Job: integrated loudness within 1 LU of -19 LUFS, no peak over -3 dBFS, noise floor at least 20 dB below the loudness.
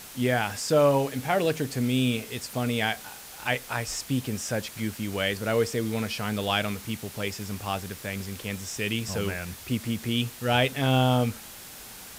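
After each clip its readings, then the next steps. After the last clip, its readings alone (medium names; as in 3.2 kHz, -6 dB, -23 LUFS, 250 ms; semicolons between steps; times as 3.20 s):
noise floor -44 dBFS; noise floor target -48 dBFS; loudness -27.5 LUFS; peak level -8.5 dBFS; loudness target -19.0 LUFS
-> noise print and reduce 6 dB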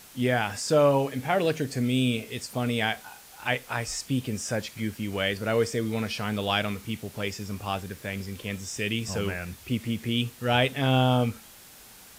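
noise floor -50 dBFS; loudness -27.5 LUFS; peak level -8.5 dBFS; loudness target -19.0 LUFS
-> trim +8.5 dB; peak limiter -3 dBFS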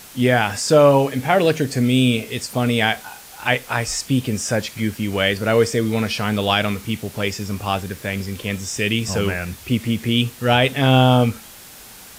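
loudness -19.5 LUFS; peak level -3.0 dBFS; noise floor -41 dBFS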